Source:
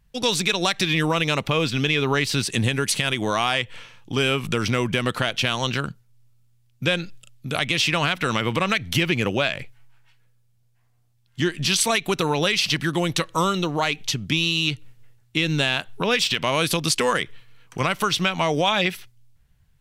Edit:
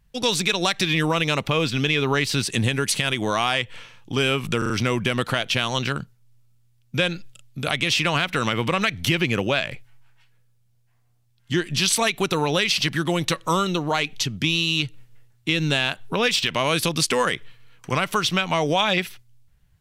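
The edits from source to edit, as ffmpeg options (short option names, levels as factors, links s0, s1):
-filter_complex "[0:a]asplit=4[s0][s1][s2][s3];[s0]atrim=end=4.622[s4];[s1]atrim=start=4.578:end=4.622[s5];[s2]atrim=start=4.578:end=4.622[s6];[s3]atrim=start=4.578[s7];[s4][s5]acrossfade=d=0.004:c1=hsin:c2=hsin[s8];[s8][s6]acrossfade=d=0.004:c1=hsin:c2=hsin[s9];[s9][s7]acrossfade=d=0.004:c1=hsin:c2=hsin"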